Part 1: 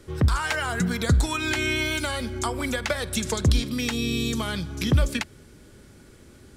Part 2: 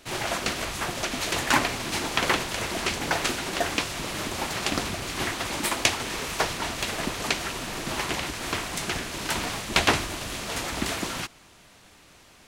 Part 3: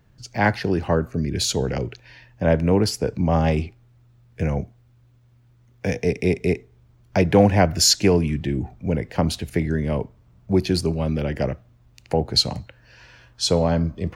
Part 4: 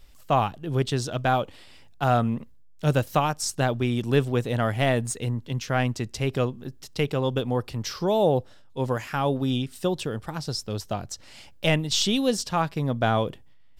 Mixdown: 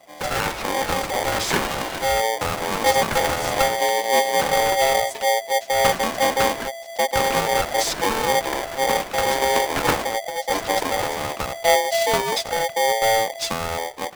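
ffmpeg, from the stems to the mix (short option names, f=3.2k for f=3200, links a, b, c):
-filter_complex "[0:a]volume=-9.5dB[a];[1:a]lowpass=f=1.5k:w=0.5412,lowpass=f=1.5k:w=1.3066,volume=1dB[b];[2:a]acompressor=threshold=-24dB:ratio=6,volume=0.5dB,asplit=2[c][d];[3:a]asubboost=boost=11:cutoff=160,volume=-7dB[e];[d]apad=whole_len=550071[f];[b][f]sidechaingate=range=-33dB:threshold=-43dB:ratio=16:detection=peak[g];[a][g][c][e]amix=inputs=4:normalize=0,aeval=exprs='val(0)*sgn(sin(2*PI*670*n/s))':c=same"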